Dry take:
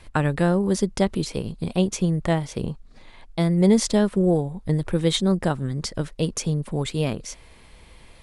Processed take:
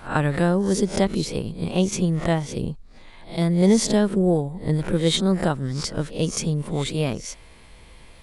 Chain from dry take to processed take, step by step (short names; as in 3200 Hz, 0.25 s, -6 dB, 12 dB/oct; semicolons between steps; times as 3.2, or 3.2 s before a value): spectral swells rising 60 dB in 0.32 s; 2.53–3.42 dynamic EQ 1200 Hz, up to -7 dB, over -47 dBFS, Q 0.86